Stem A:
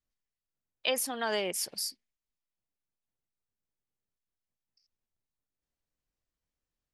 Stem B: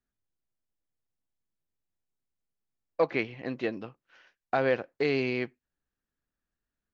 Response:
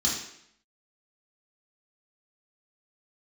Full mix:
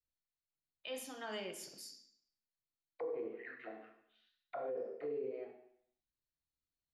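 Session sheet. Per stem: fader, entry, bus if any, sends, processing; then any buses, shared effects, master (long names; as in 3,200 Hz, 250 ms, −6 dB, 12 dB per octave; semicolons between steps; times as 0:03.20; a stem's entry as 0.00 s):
−10.0 dB, 0.00 s, send −14 dB, notch filter 730 Hz, Q 12
+2.5 dB, 0.00 s, send −8.5 dB, envelope filter 460–4,200 Hz, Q 12, down, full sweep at −23.5 dBFS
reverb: on, RT60 0.70 s, pre-delay 3 ms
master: high-shelf EQ 3,400 Hz −7.5 dB; brickwall limiter −33.5 dBFS, peak gain reduction 11.5 dB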